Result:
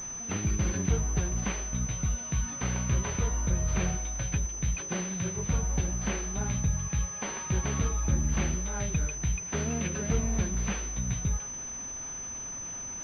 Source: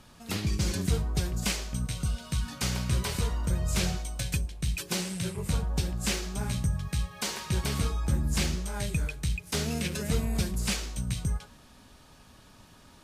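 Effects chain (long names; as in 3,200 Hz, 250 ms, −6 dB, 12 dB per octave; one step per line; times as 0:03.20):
linear delta modulator 64 kbit/s, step −40.5 dBFS
switching amplifier with a slow clock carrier 6,100 Hz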